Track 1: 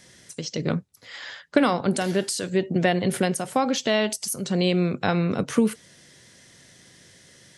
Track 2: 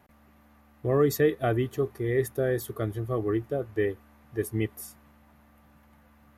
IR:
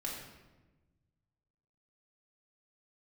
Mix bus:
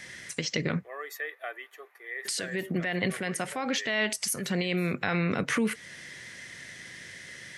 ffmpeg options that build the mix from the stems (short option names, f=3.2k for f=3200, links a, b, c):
-filter_complex "[0:a]alimiter=limit=-15.5dB:level=0:latency=1:release=43,volume=1.5dB,asplit=3[a][b][c];[a]atrim=end=0.89,asetpts=PTS-STARTPTS,afade=t=out:st=0.886:d=0.004:c=hsin[d];[b]atrim=start=0.89:end=2.25,asetpts=PTS-STARTPTS,volume=0[e];[c]atrim=start=2.25,asetpts=PTS-STARTPTS,afade=t=in:d=0.004:c=hsin[f];[d][e][f]concat=n=3:v=0:a=1[g];[1:a]highpass=f=580:w=0.5412,highpass=f=580:w=1.3066,volume=-10.5dB,asplit=2[h][i];[i]apad=whole_len=334032[j];[g][j]sidechaincompress=threshold=-47dB:ratio=8:attack=11:release=467[k];[k][h]amix=inputs=2:normalize=0,equalizer=f=2k:w=1.4:g=13,acompressor=threshold=-32dB:ratio=1.5"